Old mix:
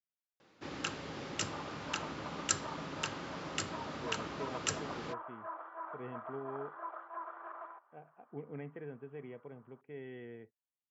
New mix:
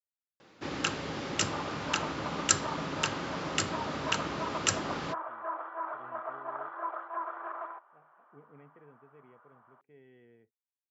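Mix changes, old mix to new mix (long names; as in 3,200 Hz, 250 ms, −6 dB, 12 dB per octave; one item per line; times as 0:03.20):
speech −11.5 dB
first sound +7.0 dB
second sound +7.5 dB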